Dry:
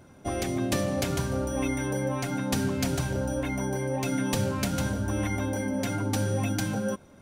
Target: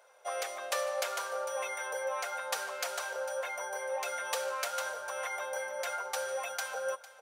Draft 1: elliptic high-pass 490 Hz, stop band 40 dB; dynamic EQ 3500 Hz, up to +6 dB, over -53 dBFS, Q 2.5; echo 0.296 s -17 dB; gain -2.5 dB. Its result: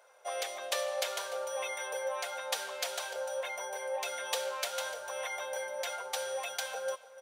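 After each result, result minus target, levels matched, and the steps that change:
echo 0.157 s early; 4000 Hz band +4.0 dB
change: echo 0.453 s -17 dB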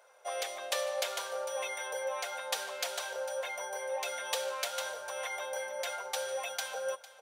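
4000 Hz band +4.0 dB
change: dynamic EQ 1300 Hz, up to +6 dB, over -53 dBFS, Q 2.5

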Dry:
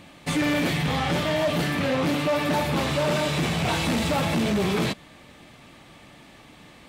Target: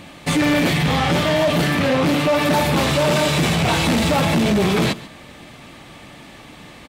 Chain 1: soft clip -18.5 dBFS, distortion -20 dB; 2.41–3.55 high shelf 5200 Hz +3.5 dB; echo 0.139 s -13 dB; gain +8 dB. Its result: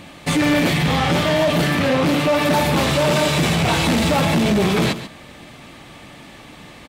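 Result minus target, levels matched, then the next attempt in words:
echo-to-direct +6 dB
soft clip -18.5 dBFS, distortion -20 dB; 2.41–3.55 high shelf 5200 Hz +3.5 dB; echo 0.139 s -19 dB; gain +8 dB

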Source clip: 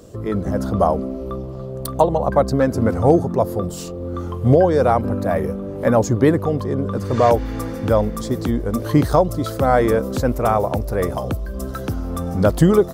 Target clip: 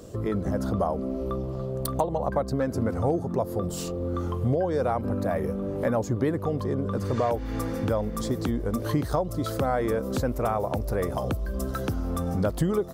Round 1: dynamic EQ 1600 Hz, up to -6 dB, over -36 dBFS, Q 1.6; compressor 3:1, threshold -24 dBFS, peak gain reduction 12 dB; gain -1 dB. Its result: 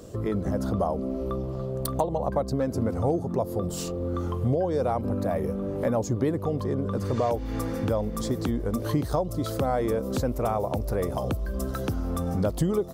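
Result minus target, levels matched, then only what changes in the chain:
2000 Hz band -3.5 dB
change: dynamic EQ 6000 Hz, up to -6 dB, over -36 dBFS, Q 1.6

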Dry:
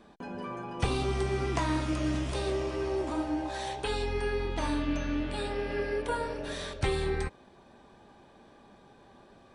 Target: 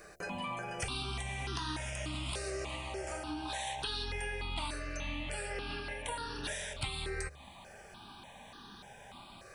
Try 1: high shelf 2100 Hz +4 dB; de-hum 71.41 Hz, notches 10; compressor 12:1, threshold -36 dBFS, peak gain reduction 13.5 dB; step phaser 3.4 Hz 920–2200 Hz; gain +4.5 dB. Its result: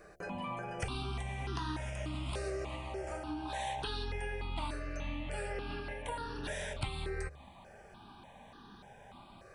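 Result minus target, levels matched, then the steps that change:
4000 Hz band -4.5 dB
change: high shelf 2100 Hz +15.5 dB

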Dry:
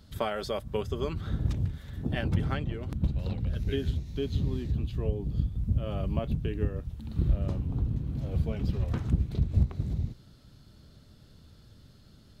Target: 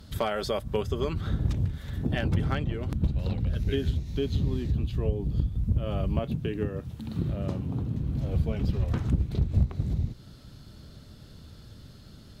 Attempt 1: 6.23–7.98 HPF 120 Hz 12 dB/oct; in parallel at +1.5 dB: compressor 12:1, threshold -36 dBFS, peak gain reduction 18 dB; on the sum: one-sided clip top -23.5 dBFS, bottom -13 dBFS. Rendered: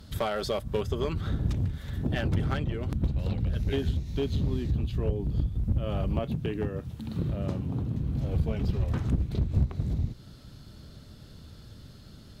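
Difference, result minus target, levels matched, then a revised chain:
one-sided clip: distortion +5 dB
6.23–7.98 HPF 120 Hz 12 dB/oct; in parallel at +1.5 dB: compressor 12:1, threshold -36 dBFS, peak gain reduction 18 dB; on the sum: one-sided clip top -17 dBFS, bottom -13 dBFS

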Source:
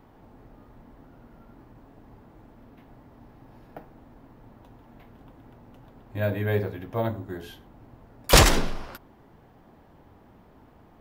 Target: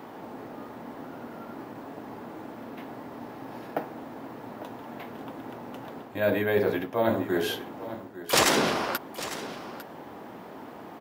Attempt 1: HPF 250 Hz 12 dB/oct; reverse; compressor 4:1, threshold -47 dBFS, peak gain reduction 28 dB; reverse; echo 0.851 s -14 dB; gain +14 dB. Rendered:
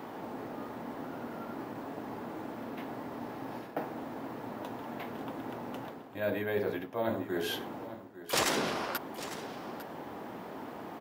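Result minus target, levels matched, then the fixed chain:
compressor: peak gain reduction +7.5 dB
HPF 250 Hz 12 dB/oct; reverse; compressor 4:1, threshold -37 dBFS, peak gain reduction 20.5 dB; reverse; echo 0.851 s -14 dB; gain +14 dB

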